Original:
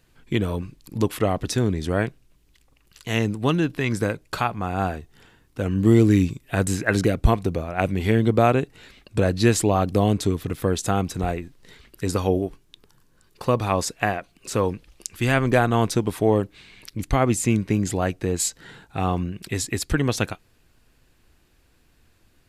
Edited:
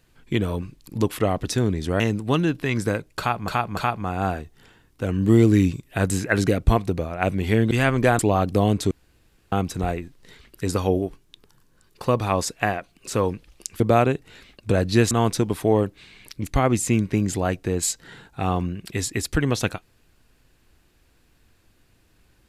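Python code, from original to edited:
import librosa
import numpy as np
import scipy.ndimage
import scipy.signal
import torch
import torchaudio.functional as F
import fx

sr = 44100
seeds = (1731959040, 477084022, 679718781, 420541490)

y = fx.edit(x, sr, fx.cut(start_s=2.0, length_s=1.15),
    fx.repeat(start_s=4.34, length_s=0.29, count=3),
    fx.swap(start_s=8.28, length_s=1.31, other_s=15.2, other_length_s=0.48),
    fx.room_tone_fill(start_s=10.31, length_s=0.61), tone=tone)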